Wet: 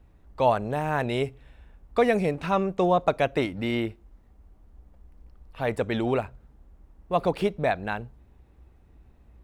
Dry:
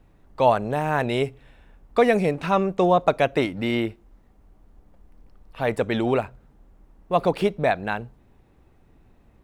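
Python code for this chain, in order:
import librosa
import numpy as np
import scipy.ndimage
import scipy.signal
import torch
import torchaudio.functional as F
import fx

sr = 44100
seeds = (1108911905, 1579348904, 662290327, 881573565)

y = fx.peak_eq(x, sr, hz=60.0, db=12.0, octaves=0.78)
y = F.gain(torch.from_numpy(y), -3.5).numpy()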